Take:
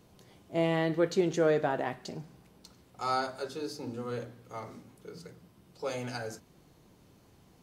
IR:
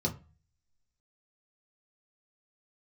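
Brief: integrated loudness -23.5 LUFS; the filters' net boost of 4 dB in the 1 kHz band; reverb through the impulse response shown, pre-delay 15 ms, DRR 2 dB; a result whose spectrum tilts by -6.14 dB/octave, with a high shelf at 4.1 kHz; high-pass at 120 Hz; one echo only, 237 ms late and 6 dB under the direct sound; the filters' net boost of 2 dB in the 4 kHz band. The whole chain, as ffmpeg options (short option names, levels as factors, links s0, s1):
-filter_complex "[0:a]highpass=120,equalizer=f=1000:t=o:g=6,equalizer=f=4000:t=o:g=6.5,highshelf=f=4100:g=-7.5,aecho=1:1:237:0.501,asplit=2[s0][s1];[1:a]atrim=start_sample=2205,adelay=15[s2];[s1][s2]afir=irnorm=-1:irlink=0,volume=0.422[s3];[s0][s3]amix=inputs=2:normalize=0,volume=1.26"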